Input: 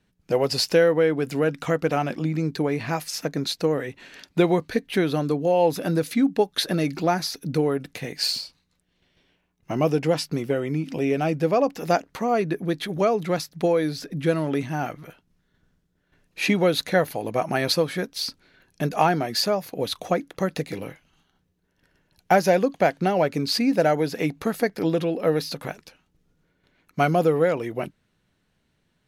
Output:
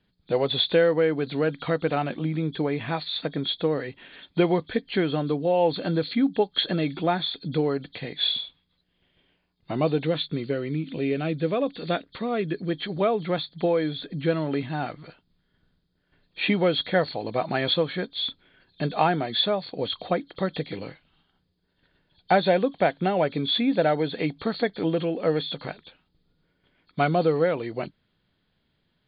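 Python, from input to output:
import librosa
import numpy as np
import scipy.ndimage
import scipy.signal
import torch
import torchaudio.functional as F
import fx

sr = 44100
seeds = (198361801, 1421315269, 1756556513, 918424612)

y = fx.freq_compress(x, sr, knee_hz=3100.0, ratio=4.0)
y = fx.peak_eq(y, sr, hz=830.0, db=-9.5, octaves=0.71, at=(10.05, 12.71))
y = y * librosa.db_to_amplitude(-2.0)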